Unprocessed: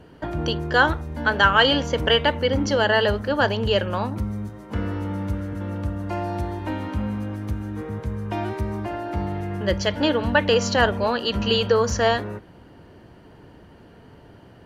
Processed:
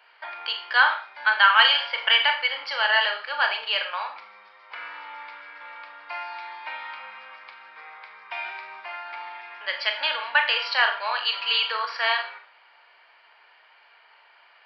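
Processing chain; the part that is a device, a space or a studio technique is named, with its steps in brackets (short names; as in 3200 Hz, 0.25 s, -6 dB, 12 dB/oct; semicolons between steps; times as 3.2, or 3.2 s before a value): musical greeting card (downsampling 11025 Hz; HPF 900 Hz 24 dB/oct; bell 2300 Hz +11.5 dB 0.25 oct); Schroeder reverb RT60 0.39 s, combs from 27 ms, DRR 5 dB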